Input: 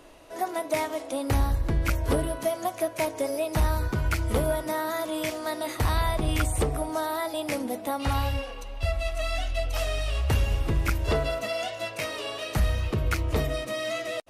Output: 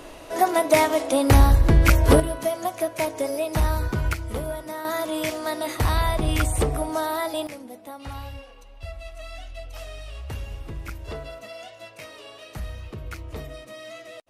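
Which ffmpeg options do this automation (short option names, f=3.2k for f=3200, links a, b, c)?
-af "asetnsamples=n=441:p=0,asendcmd='2.2 volume volume 2dB;4.13 volume volume -4.5dB;4.85 volume volume 3dB;7.47 volume volume -9.5dB',volume=9.5dB"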